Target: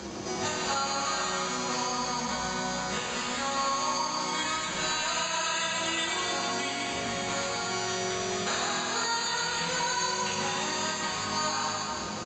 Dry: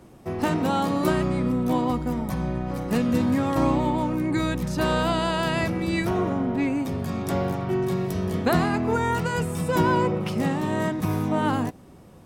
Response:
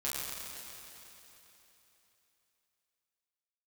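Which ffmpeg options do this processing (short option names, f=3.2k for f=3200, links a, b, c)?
-filter_complex "[0:a]acrossover=split=750|1600[a][b][c];[a]acompressor=threshold=-37dB:ratio=12[d];[d][b][c]amix=inputs=3:normalize=0,highpass=57,lowshelf=f=150:g=-9,acrusher=samples=8:mix=1:aa=0.000001,aemphasis=mode=production:type=75kf,acompressor=mode=upward:threshold=-18dB:ratio=2.5,aresample=16000,aresample=44100[e];[1:a]atrim=start_sample=2205[f];[e][f]afir=irnorm=-1:irlink=0,alimiter=limit=-13.5dB:level=0:latency=1:release=199,volume=-5.5dB"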